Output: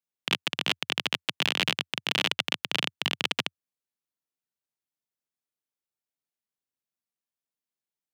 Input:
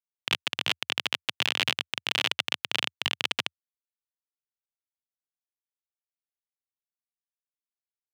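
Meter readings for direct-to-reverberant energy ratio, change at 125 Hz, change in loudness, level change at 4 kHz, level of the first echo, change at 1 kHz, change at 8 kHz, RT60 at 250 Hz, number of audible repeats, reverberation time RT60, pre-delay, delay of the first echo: none, +5.5 dB, 0.0 dB, 0.0 dB, none, +1.0 dB, 0.0 dB, none, none, none, none, none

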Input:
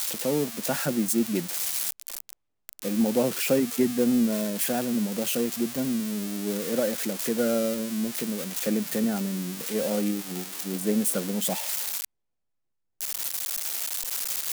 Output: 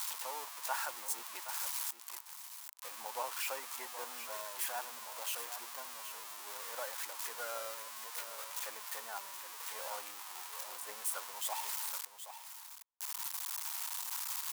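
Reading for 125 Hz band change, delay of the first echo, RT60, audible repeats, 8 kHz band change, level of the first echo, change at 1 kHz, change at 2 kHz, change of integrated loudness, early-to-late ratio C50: under -40 dB, 0.773 s, none, 1, -9.5 dB, -10.5 dB, -3.0 dB, -7.0 dB, -13.0 dB, none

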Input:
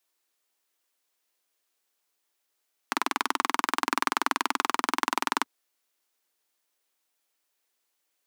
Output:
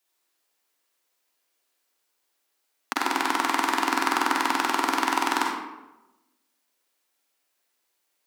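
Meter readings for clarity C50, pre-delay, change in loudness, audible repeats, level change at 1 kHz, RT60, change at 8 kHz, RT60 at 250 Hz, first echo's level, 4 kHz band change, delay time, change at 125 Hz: 0.0 dB, 38 ms, +3.5 dB, none, +4.0 dB, 1.0 s, +2.5 dB, 1.1 s, none, +3.0 dB, none, n/a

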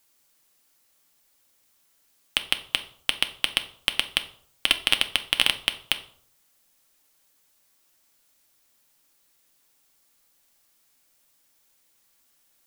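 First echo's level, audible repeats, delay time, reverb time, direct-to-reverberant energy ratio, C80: none, none, none, 0.60 s, 7.5 dB, 18.0 dB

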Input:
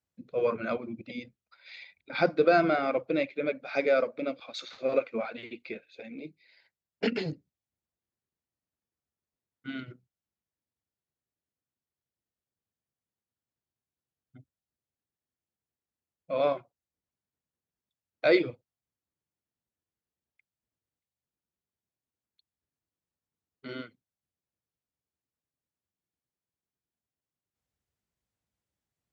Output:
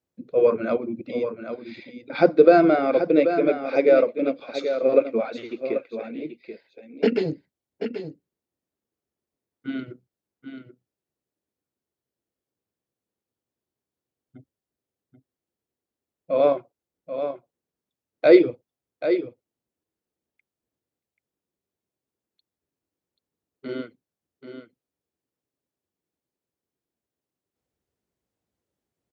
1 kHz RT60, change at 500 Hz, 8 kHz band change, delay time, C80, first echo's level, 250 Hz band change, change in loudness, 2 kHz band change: none, +9.5 dB, n/a, 0.784 s, none, -9.0 dB, +10.0 dB, +7.5 dB, +1.5 dB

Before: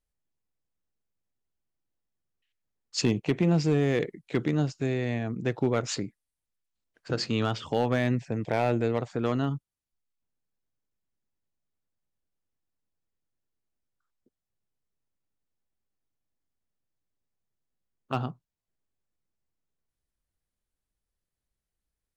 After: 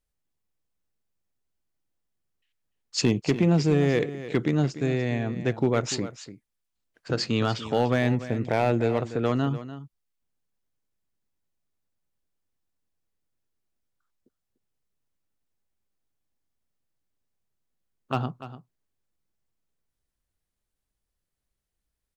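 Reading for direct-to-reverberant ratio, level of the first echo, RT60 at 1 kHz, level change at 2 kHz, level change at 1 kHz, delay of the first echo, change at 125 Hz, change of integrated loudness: none, -13.5 dB, none, +2.5 dB, +2.5 dB, 0.294 s, +2.5 dB, +2.5 dB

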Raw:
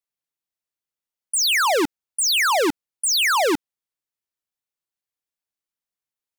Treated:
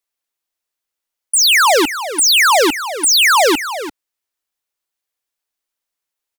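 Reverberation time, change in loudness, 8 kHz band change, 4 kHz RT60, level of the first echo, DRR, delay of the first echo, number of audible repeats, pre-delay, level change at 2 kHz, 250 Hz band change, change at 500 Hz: none, +8.0 dB, +8.5 dB, none, -12.0 dB, none, 0.342 s, 1, none, +8.0 dB, +5.0 dB, +7.0 dB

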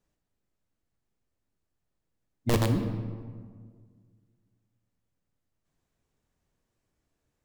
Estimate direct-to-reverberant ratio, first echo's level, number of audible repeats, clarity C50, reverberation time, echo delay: 5.5 dB, none, none, 7.0 dB, 1.7 s, none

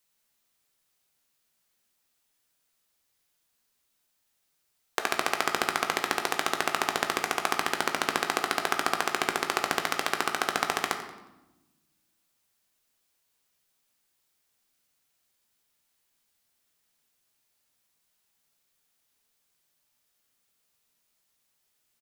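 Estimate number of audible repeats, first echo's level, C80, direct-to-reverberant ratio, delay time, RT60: 1, -14.0 dB, 9.0 dB, 4.5 dB, 90 ms, 1.0 s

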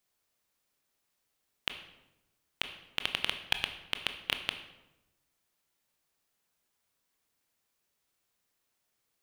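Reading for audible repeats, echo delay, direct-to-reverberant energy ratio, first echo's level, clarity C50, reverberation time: none, none, 7.0 dB, none, 10.0 dB, 0.95 s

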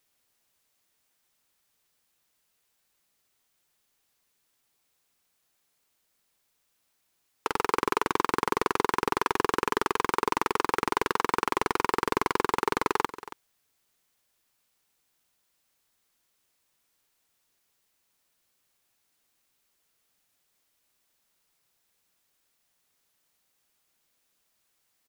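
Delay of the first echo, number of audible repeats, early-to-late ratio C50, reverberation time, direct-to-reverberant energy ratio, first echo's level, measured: 0.277 s, 1, none, none, none, -14.5 dB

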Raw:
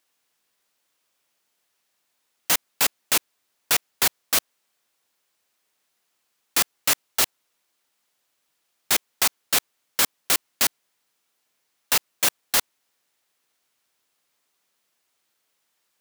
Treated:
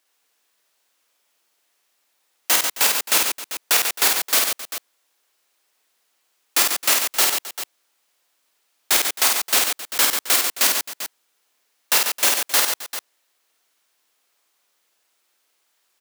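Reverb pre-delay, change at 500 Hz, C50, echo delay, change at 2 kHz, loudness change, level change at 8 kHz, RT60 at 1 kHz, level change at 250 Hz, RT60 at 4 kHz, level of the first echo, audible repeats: none, +4.5 dB, none, 53 ms, +5.0 dB, +4.5 dB, +5.0 dB, none, +1.5 dB, none, -3.5 dB, 4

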